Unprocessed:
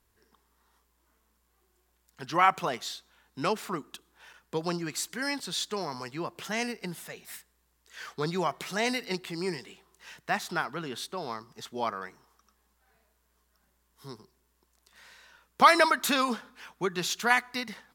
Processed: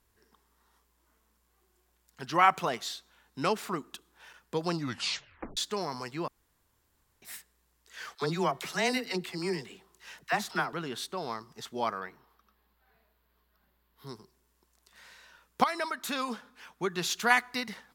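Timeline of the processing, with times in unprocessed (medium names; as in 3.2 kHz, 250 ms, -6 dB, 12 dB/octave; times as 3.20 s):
4.72 s: tape stop 0.85 s
6.28–7.22 s: room tone
8.15–10.73 s: phase dispersion lows, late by 44 ms, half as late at 620 Hz
12.00–14.07 s: high-order bell 7.4 kHz -13 dB 1.1 oct
15.64–17.20 s: fade in, from -15 dB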